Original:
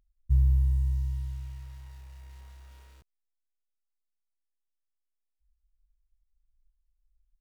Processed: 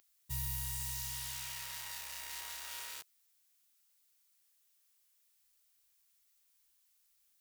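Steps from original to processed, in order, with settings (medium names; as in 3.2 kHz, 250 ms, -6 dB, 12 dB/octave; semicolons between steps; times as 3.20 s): high-pass 890 Hz 6 dB/octave; tilt EQ +3 dB/octave; trim +13 dB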